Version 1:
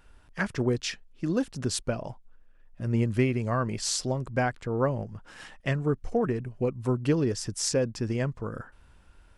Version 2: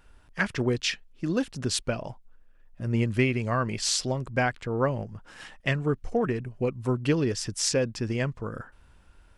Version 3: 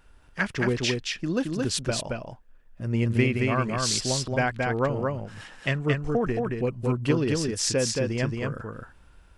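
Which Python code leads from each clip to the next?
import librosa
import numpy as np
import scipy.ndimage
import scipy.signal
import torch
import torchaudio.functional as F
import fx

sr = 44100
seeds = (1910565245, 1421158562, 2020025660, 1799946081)

y1 = fx.dynamic_eq(x, sr, hz=2800.0, q=0.8, threshold_db=-47.0, ratio=4.0, max_db=7)
y2 = y1 + 10.0 ** (-3.0 / 20.0) * np.pad(y1, (int(223 * sr / 1000.0), 0))[:len(y1)]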